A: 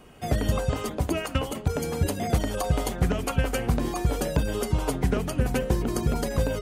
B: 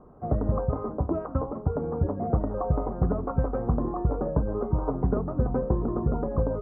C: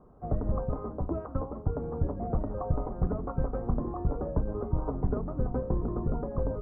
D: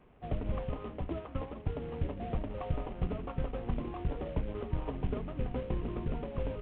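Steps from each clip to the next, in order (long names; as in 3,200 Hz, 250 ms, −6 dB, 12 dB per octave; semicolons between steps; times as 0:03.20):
elliptic low-pass filter 1,200 Hz, stop band 80 dB
sub-octave generator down 2 octaves, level −1 dB; level −5.5 dB
variable-slope delta modulation 16 kbit/s; level −4.5 dB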